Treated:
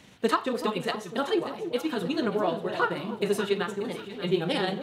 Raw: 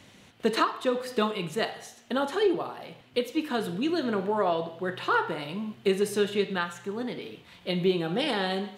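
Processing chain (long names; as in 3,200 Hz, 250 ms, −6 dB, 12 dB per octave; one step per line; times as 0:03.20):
time stretch by overlap-add 0.55×, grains 86 ms
on a send: delay that swaps between a low-pass and a high-pass 293 ms, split 840 Hz, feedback 59%, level −8 dB
on the sum: level +1 dB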